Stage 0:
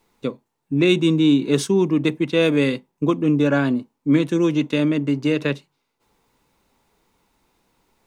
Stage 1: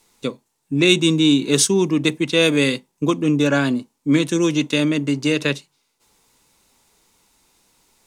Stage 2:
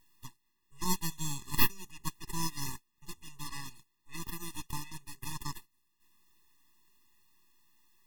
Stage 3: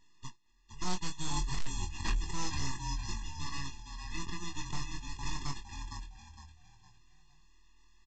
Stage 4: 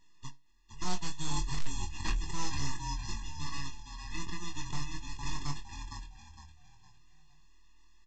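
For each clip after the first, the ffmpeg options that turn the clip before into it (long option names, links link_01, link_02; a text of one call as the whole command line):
ffmpeg -i in.wav -af "equalizer=frequency=8100:width=0.4:gain=14" out.wav
ffmpeg -i in.wav -af "aderivative,aeval=exprs='abs(val(0))':channel_layout=same,afftfilt=real='re*eq(mod(floor(b*sr/1024/410),2),0)':imag='im*eq(mod(floor(b*sr/1024/410),2),0)':win_size=1024:overlap=0.75,volume=-2.5dB" out.wav
ffmpeg -i in.wav -filter_complex "[0:a]asplit=5[link_01][link_02][link_03][link_04][link_05];[link_02]adelay=460,afreqshift=-39,volume=-7dB[link_06];[link_03]adelay=920,afreqshift=-78,volume=-16.4dB[link_07];[link_04]adelay=1380,afreqshift=-117,volume=-25.7dB[link_08];[link_05]adelay=1840,afreqshift=-156,volume=-35.1dB[link_09];[link_01][link_06][link_07][link_08][link_09]amix=inputs=5:normalize=0,aresample=16000,volume=29.5dB,asoftclip=hard,volume=-29.5dB,aresample=44100,asplit=2[link_10][link_11];[link_11]adelay=22,volume=-5dB[link_12];[link_10][link_12]amix=inputs=2:normalize=0,volume=1.5dB" out.wav
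ffmpeg -i in.wav -af "flanger=delay=6.2:depth=1.2:regen=83:speed=1.4:shape=triangular,volume=4.5dB" out.wav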